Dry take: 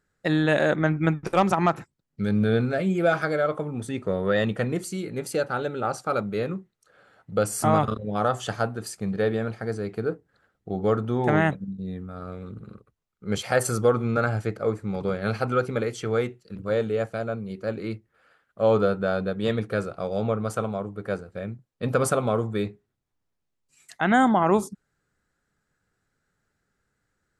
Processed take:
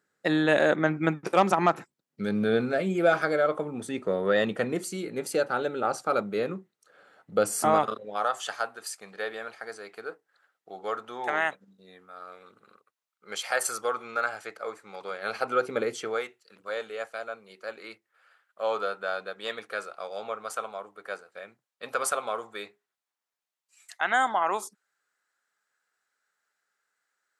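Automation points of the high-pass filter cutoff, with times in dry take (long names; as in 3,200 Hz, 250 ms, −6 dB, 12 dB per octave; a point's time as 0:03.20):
0:07.54 240 Hz
0:08.32 850 Hz
0:15.08 850 Hz
0:15.93 260 Hz
0:16.25 850 Hz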